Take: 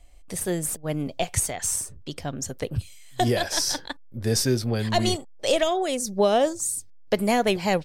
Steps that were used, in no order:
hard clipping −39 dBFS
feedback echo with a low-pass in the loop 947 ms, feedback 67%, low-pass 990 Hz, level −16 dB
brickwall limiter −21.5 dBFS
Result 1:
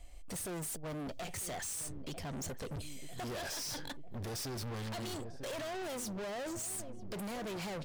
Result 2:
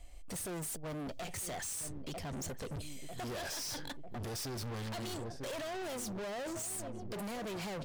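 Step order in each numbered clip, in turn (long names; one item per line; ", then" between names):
brickwall limiter, then feedback echo with a low-pass in the loop, then hard clipping
feedback echo with a low-pass in the loop, then brickwall limiter, then hard clipping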